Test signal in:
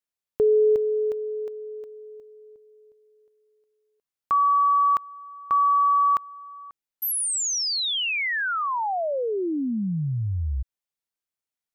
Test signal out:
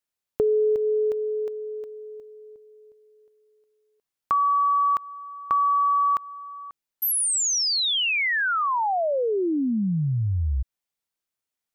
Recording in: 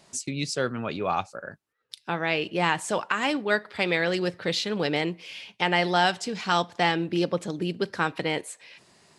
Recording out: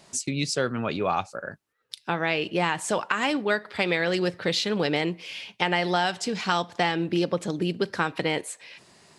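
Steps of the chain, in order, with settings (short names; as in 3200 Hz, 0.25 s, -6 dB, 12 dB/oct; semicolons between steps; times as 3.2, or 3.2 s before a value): compressor 4:1, threshold -23 dBFS; gain +3 dB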